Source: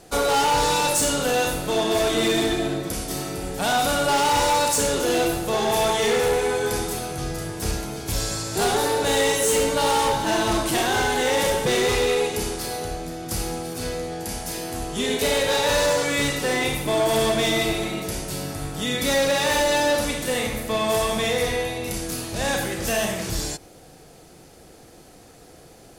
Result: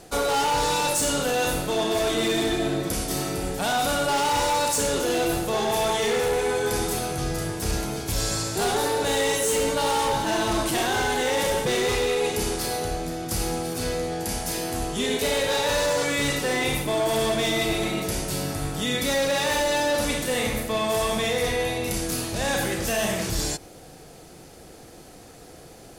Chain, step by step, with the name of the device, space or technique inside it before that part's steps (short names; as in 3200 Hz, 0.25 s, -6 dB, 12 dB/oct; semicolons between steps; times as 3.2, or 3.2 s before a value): compression on the reversed sound (reverse; compressor, threshold -23 dBFS, peak gain reduction 5.5 dB; reverse); gain +2 dB